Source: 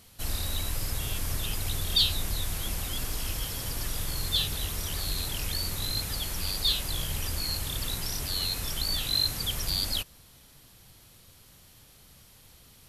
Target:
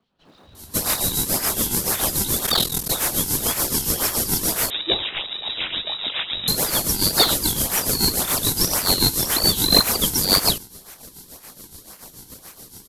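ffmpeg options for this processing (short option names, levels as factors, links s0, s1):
-filter_complex "[0:a]acrossover=split=2200[s0][s1];[s0]aeval=exprs='val(0)*(1-0.7/2+0.7/2*cos(2*PI*7*n/s))':c=same[s2];[s1]aeval=exprs='val(0)*(1-0.7/2-0.7/2*cos(2*PI*7*n/s))':c=same[s3];[s2][s3]amix=inputs=2:normalize=0,acrossover=split=170|1800[s4][s5][s6];[s4]adelay=230[s7];[s6]adelay=550[s8];[s7][s5][s8]amix=inputs=3:normalize=0,acrossover=split=140|2200[s9][s10][s11];[s11]aexciter=amount=12.3:drive=5.4:freq=3000[s12];[s9][s10][s12]amix=inputs=3:normalize=0,highpass=110,asplit=2[s13][s14];[s14]acrusher=samples=42:mix=1:aa=0.000001:lfo=1:lforange=67.2:lforate=1.9,volume=0.596[s15];[s13][s15]amix=inputs=2:normalize=0,asplit=3[s16][s17][s18];[s16]afade=t=out:st=2.46:d=0.02[s19];[s17]aeval=exprs='val(0)*sin(2*PI*21*n/s)':c=same,afade=t=in:st=2.46:d=0.02,afade=t=out:st=2.88:d=0.02[s20];[s18]afade=t=in:st=2.88:d=0.02[s21];[s19][s20][s21]amix=inputs=3:normalize=0,asettb=1/sr,asplit=3[s22][s23][s24];[s22]atrim=end=4.704[s25];[s23]atrim=start=4.7:end=6.48,asetpts=PTS-STARTPTS,afade=t=in:d=0.004:c=qsin,afade=t=out:st=1.776:d=0.004:c=qsin,lowpass=f=3300:t=q:w=0.5098,lowpass=f=3300:t=q:w=0.6013,lowpass=f=3300:t=q:w=0.9,lowpass=f=3300:t=q:w=2.563,afreqshift=-3900[s26];[s24]atrim=start=6.476[s27];[s25][s26]acrossfade=d=0.004:c1=hsin:c2=qsin[s28];[s28][s27]acrossfade=d=0.004:c1=qsin:c2=hsin,volume=0.422"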